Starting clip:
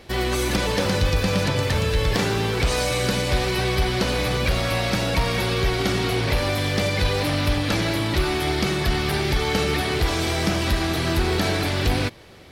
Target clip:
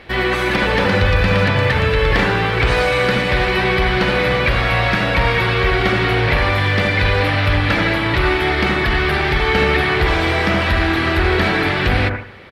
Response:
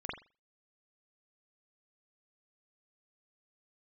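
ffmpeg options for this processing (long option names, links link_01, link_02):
-filter_complex "[0:a]firequalizer=gain_entry='entry(380,0);entry(1800,9);entry(6200,-11)':delay=0.05:min_phase=1,asplit=2[link_01][link_02];[1:a]atrim=start_sample=2205,asetrate=26460,aresample=44100[link_03];[link_02][link_03]afir=irnorm=-1:irlink=0,volume=-6.5dB[link_04];[link_01][link_04]amix=inputs=2:normalize=0"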